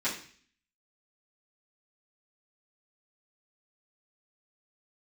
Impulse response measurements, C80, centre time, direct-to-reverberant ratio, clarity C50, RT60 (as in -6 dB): 11.5 dB, 25 ms, -12.0 dB, 7.5 dB, 0.45 s